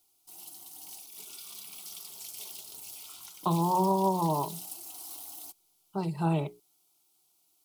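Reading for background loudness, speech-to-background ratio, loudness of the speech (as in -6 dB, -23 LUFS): -42.0 LUFS, 12.5 dB, -29.5 LUFS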